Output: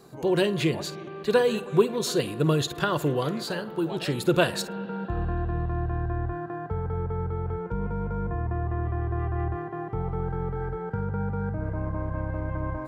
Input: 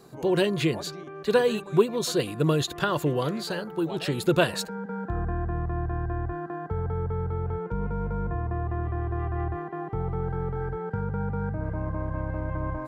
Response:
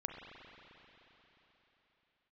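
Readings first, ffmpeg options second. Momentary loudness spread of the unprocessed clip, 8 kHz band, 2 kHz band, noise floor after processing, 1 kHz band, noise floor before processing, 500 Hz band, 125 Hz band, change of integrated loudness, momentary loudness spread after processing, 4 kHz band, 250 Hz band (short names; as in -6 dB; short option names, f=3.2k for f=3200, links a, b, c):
9 LU, 0.0 dB, 0.0 dB, -39 dBFS, 0.0 dB, -41 dBFS, 0.0 dB, +0.5 dB, 0.0 dB, 9 LU, 0.0 dB, 0.0 dB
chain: -filter_complex "[0:a]asplit=2[a][b];[1:a]atrim=start_sample=2205,adelay=51[c];[b][c]afir=irnorm=-1:irlink=0,volume=-14dB[d];[a][d]amix=inputs=2:normalize=0"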